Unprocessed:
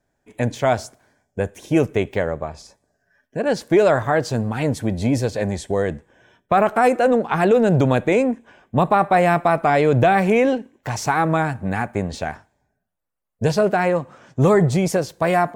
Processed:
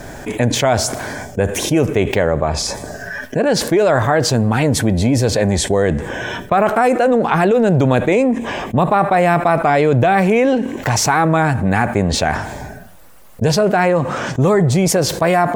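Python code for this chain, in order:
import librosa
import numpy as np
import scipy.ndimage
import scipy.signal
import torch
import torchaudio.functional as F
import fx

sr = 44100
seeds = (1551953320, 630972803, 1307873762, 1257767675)

y = fx.notch(x, sr, hz=1500.0, q=6.1, at=(8.12, 8.75))
y = fx.env_flatten(y, sr, amount_pct=70)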